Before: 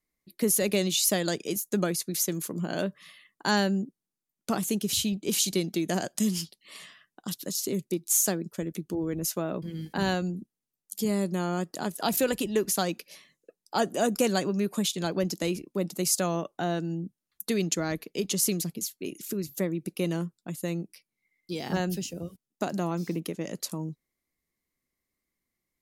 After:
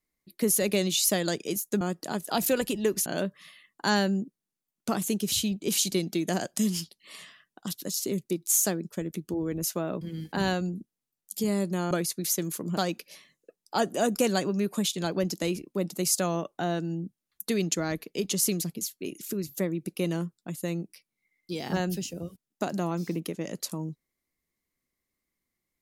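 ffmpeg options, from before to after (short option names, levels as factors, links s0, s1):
-filter_complex "[0:a]asplit=5[s0][s1][s2][s3][s4];[s0]atrim=end=1.812[s5];[s1]atrim=start=11.518:end=12.772[s6];[s2]atrim=start=2.668:end=11.522[s7];[s3]atrim=start=1.808:end=2.672[s8];[s4]atrim=start=12.768[s9];[s5][s6]acrossfade=d=0.004:c1=hsin:c2=hsin[s10];[s10][s7]acrossfade=d=0.004:c1=hsin:c2=hsin[s11];[s11][s8]acrossfade=d=0.004:c1=hsin:c2=hsin[s12];[s12][s9]acrossfade=d=0.004:c1=hsin:c2=hsin"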